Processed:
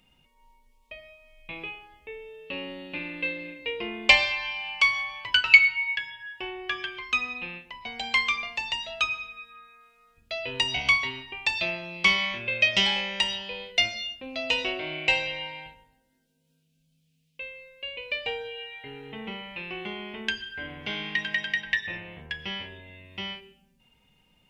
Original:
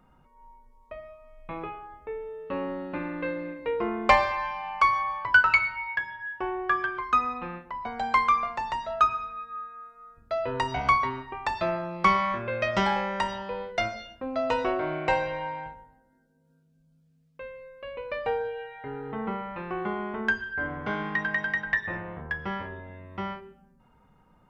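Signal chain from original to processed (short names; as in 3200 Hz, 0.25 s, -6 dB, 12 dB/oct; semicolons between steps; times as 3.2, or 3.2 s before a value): resonant high shelf 1900 Hz +13 dB, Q 3; gain -5.5 dB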